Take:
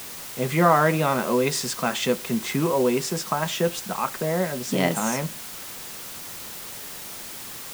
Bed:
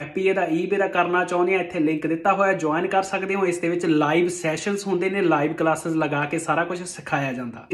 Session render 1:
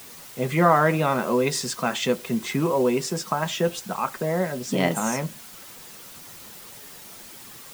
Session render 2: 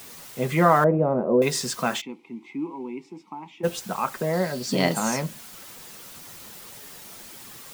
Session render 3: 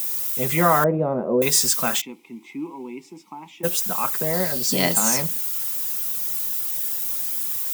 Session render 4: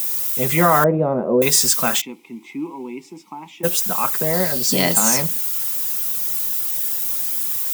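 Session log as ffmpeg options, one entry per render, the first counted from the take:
-af "afftdn=nr=7:nf=-38"
-filter_complex "[0:a]asettb=1/sr,asplit=3[a][b][c];[a]atrim=end=0.844[d];[b]atrim=start=0.84:end=1.42,asetpts=PTS-STARTPTS,afade=t=in:d=0.004:c=qsin,afade=t=out:st=0.576:d=0.004:c=qsin,lowpass=f=550:t=q:w=1.5[e];[c]atrim=start=1.416[f];[d][e]acrossfade=d=0.004:c1=hsin:c2=qsin[g];[g][f]acrossfade=d=0.004:c1=qsin:c2=hsin,asplit=3[h][i][j];[h]afade=t=out:st=2:d=0.02[k];[i]asplit=3[l][m][n];[l]bandpass=f=300:t=q:w=8,volume=0dB[o];[m]bandpass=f=870:t=q:w=8,volume=-6dB[p];[n]bandpass=f=2.24k:t=q:w=8,volume=-9dB[q];[o][p][q]amix=inputs=3:normalize=0,afade=t=in:st=2:d=0.02,afade=t=out:st=3.63:d=0.02[r];[j]afade=t=in:st=3.63:d=0.02[s];[k][r][s]amix=inputs=3:normalize=0,asettb=1/sr,asplit=3[t][u][v];[t]atrim=end=4.334[w];[u]atrim=start=4.33:end=5.22,asetpts=PTS-STARTPTS,afade=t=in:d=0.004:c=qsin,afade=t=out:st=0.886:d=0.004:c=qsin,equalizer=f=4.5k:t=o:w=0.24:g=13.5[x];[v]atrim=start=5.216[y];[w][x]acrossfade=d=0.004:c1=hsin:c2=qsin[z];[z][y]acrossfade=d=0.004:c1=qsin:c2=hsin"
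-af "aemphasis=mode=production:type=75fm,bandreject=f=4.4k:w=25"
-af "volume=3.5dB,alimiter=limit=-2dB:level=0:latency=1"

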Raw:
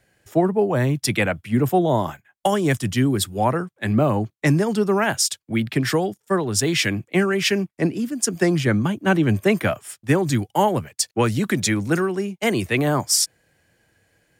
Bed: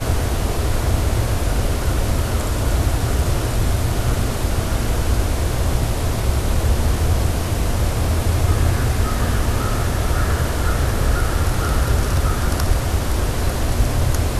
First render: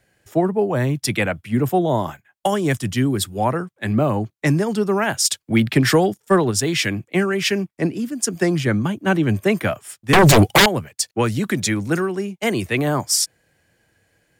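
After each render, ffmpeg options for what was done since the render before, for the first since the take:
-filter_complex "[0:a]asplit=3[a][b][c];[a]afade=t=out:st=5.24:d=0.02[d];[b]acontrast=47,afade=t=in:st=5.24:d=0.02,afade=t=out:st=6.5:d=0.02[e];[c]afade=t=in:st=6.5:d=0.02[f];[d][e][f]amix=inputs=3:normalize=0,asettb=1/sr,asplit=3[g][h][i];[g]atrim=end=10.134[j];[h]atrim=start=10.13:end=10.66,asetpts=PTS-STARTPTS,afade=t=in:d=0.004:c=qsin,afade=t=out:st=0.526:d=0.004:c=qsin,aeval=exprs='0.422*sin(PI/2*5.01*val(0)/0.422)':c=same[k];[i]atrim=start=10.656[l];[j][k]acrossfade=d=0.004:c1=hsin:c2=qsin[m];[m][l]acrossfade=d=0.004:c1=qsin:c2=hsin"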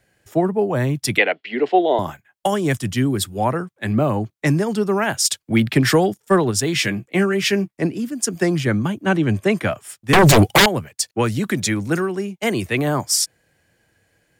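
-filter_complex "[0:a]asettb=1/sr,asplit=3[a][b][c];[a]atrim=end=1.184[d];[b]atrim=start=1.18:end=1.99,asetpts=PTS-STARTPTS,afade=t=in:d=0.004:c=qsin,afade=t=out:st=0.806:d=0.004:c=qsin,highpass=f=300:w=0.5412,highpass=f=300:w=1.3066,equalizer=f=420:t=q:w=4:g=7,equalizer=f=720:t=q:w=4:g=5,equalizer=f=1.2k:t=q:w=4:g=-6,equalizer=f=2k:t=q:w=4:g=8,equalizer=f=2.9k:t=q:w=4:g=8,equalizer=f=4.3k:t=q:w=4:g=9,lowpass=f=4.5k:w=0.5412,lowpass=f=4.5k:w=1.3066[e];[c]atrim=start=1.986[f];[d][e]acrossfade=d=0.004:c1=hsin:c2=qsin[g];[g][f]acrossfade=d=0.004:c1=qsin:c2=hsin,asettb=1/sr,asplit=3[h][i][j];[h]atrim=end=6.744[k];[i]atrim=start=6.74:end=7.83,asetpts=PTS-STARTPTS,afade=t=in:d=0.004:c=qsin,afade=t=out:st=1.086:d=0.004:c=qsin,asplit=2[l][m];[m]adelay=15,volume=-8.5dB[n];[l][n]amix=inputs=2:normalize=0,atrim=end_sample=48069[o];[j]atrim=start=7.826[p];[k][o]acrossfade=d=0.004:c1=hsin:c2=qsin[q];[q][p]acrossfade=d=0.004:c1=qsin:c2=hsin,asettb=1/sr,asplit=3[r][s][t];[r]atrim=end=9.054[u];[s]atrim=start=9.05:end=9.78,asetpts=PTS-STARTPTS,afade=t=in:d=0.004:c=qsin,afade=t=out:st=0.726:d=0.004:c=qsin,lowpass=10k[v];[t]atrim=start=9.776[w];[u][v]acrossfade=d=0.004:c1=hsin:c2=qsin[x];[x][w]acrossfade=d=0.004:c1=qsin:c2=hsin"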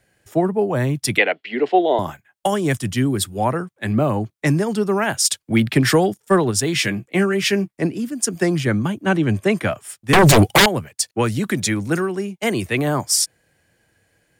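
-af "equalizer=f=9.2k:w=4.7:g=3"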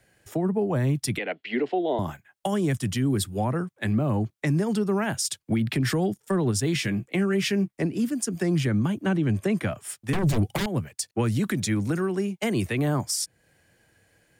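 -filter_complex "[0:a]acrossover=split=290[a][b];[b]acompressor=threshold=-29dB:ratio=2.5[c];[a][c]amix=inputs=2:normalize=0,alimiter=limit=-16dB:level=0:latency=1:release=132"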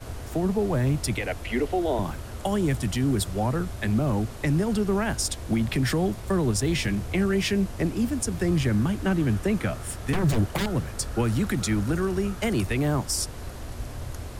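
-filter_complex "[1:a]volume=-17dB[a];[0:a][a]amix=inputs=2:normalize=0"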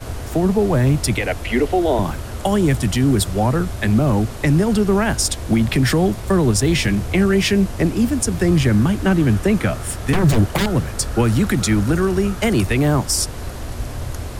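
-af "volume=8dB"

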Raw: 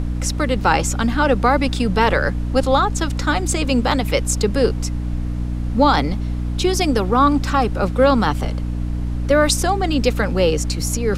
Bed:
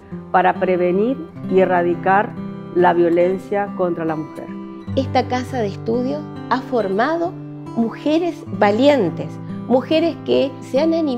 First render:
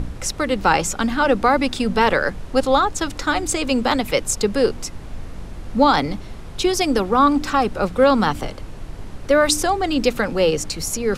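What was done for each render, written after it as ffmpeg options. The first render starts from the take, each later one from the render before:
-af "bandreject=f=60:t=h:w=4,bandreject=f=120:t=h:w=4,bandreject=f=180:t=h:w=4,bandreject=f=240:t=h:w=4,bandreject=f=300:t=h:w=4"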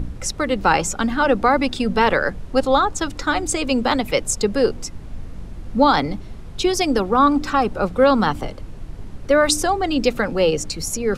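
-af "afftdn=nr=6:nf=-34"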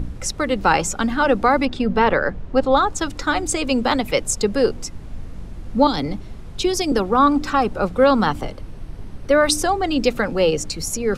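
-filter_complex "[0:a]asettb=1/sr,asplit=3[a][b][c];[a]atrim=end=1.654[d];[b]atrim=start=1.65:end=2.77,asetpts=PTS-STARTPTS,afade=t=in:d=0.004:c=qsin,afade=t=out:st=1.116:d=0.004:c=qsin,aemphasis=mode=reproduction:type=75fm[e];[c]atrim=start=2.766[f];[d][e]acrossfade=d=0.004:c1=hsin:c2=qsin[g];[g][f]acrossfade=d=0.004:c1=qsin:c2=hsin,asettb=1/sr,asplit=3[h][i][j];[h]atrim=end=5.874[k];[i]atrim=start=5.87:end=6.92,asetpts=PTS-STARTPTS,afade=t=in:d=0.004:c=qsin,afade=t=out:st=1.046:d=0.004:c=qsin,acrossover=split=480|3000[l][m][n];[m]acompressor=threshold=-29dB:ratio=6:attack=3.2:release=140:knee=2.83:detection=peak[o];[l][o][n]amix=inputs=3:normalize=0[p];[j]atrim=start=6.916[q];[k][p]acrossfade=d=0.004:c1=hsin:c2=qsin[r];[r][q]acrossfade=d=0.004:c1=qsin:c2=hsin,asettb=1/sr,asplit=3[s][t][u];[s]atrim=end=8.514[v];[t]atrim=start=8.51:end=9.57,asetpts=PTS-STARTPTS,afade=t=in:d=0.004:c=qsin,afade=t=out:st=1.056:d=0.004:c=qsin,bandreject=f=7.1k:w=7.1[w];[u]atrim=start=9.566[x];[v][w]acrossfade=d=0.004:c1=hsin:c2=qsin[y];[y][x]acrossfade=d=0.004:c1=qsin:c2=hsin"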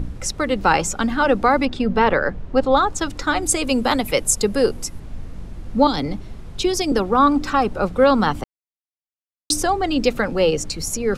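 -filter_complex "[0:a]asettb=1/sr,asplit=3[a][b][c];[a]atrim=end=3.424[d];[b]atrim=start=3.42:end=5,asetpts=PTS-STARTPTS,afade=t=in:d=0.004:c=qsin,afade=t=out:st=1.576:d=0.004:c=qsin,equalizer=f=11k:w=1.3:g=11[e];[c]atrim=start=4.996[f];[d][e]acrossfade=d=0.004:c1=hsin:c2=qsin[g];[g][f]acrossfade=d=0.004:c1=qsin:c2=hsin,asplit=3[h][i][j];[h]atrim=end=8.44,asetpts=PTS-STARTPTS,afade=t=out:st=8.436:d=0.004:c=hsin[k];[i]atrim=start=8.44:end=9.5,asetpts=PTS-STARTPTS,volume=0[l];[j]atrim=start=9.5,asetpts=PTS-STARTPTS,afade=t=in:d=0.004:c=hsin[m];[k][l][m]concat=n=3:v=0:a=1"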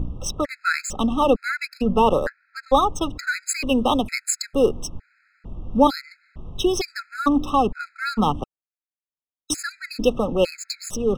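-af "adynamicsmooth=sensitivity=7:basefreq=2.1k,afftfilt=real='re*gt(sin(2*PI*1.1*pts/sr)*(1-2*mod(floor(b*sr/1024/1300),2)),0)':imag='im*gt(sin(2*PI*1.1*pts/sr)*(1-2*mod(floor(b*sr/1024/1300),2)),0)':win_size=1024:overlap=0.75"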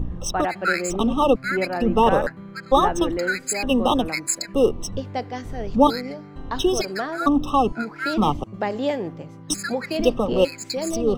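-filter_complex "[1:a]volume=-11dB[a];[0:a][a]amix=inputs=2:normalize=0"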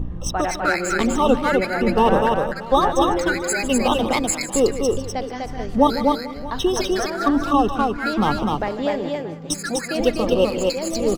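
-af "aecho=1:1:151|250|439|631:0.224|0.708|0.112|0.119"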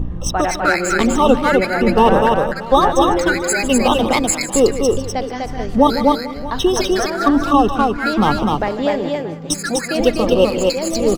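-af "volume=4.5dB,alimiter=limit=-1dB:level=0:latency=1"

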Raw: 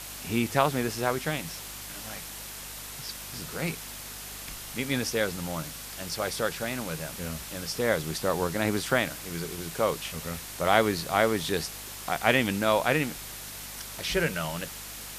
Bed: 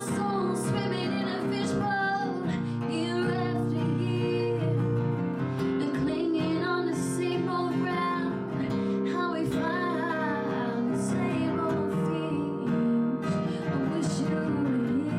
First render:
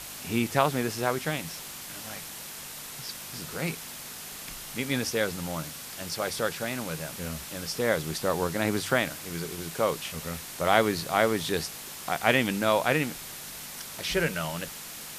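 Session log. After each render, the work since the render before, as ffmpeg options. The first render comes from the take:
-af "bandreject=f=50:t=h:w=4,bandreject=f=100:t=h:w=4"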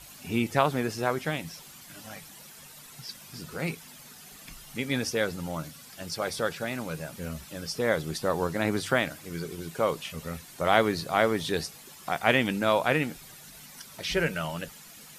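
-af "afftdn=nr=11:nf=-41"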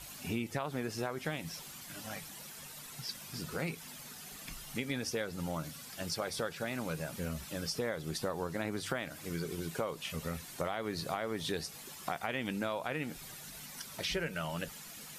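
-af "alimiter=limit=-13.5dB:level=0:latency=1:release=205,acompressor=threshold=-33dB:ratio=5"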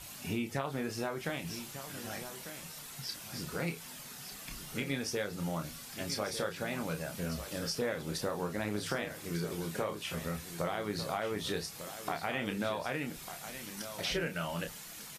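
-filter_complex "[0:a]asplit=2[a][b];[b]adelay=29,volume=-6.5dB[c];[a][c]amix=inputs=2:normalize=0,aecho=1:1:1198:0.282"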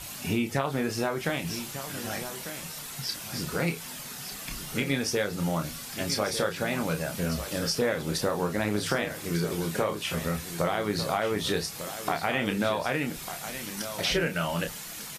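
-af "volume=7.5dB"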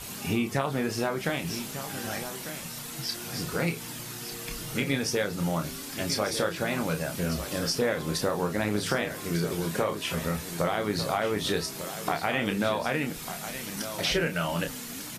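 -filter_complex "[1:a]volume=-17.5dB[a];[0:a][a]amix=inputs=2:normalize=0"

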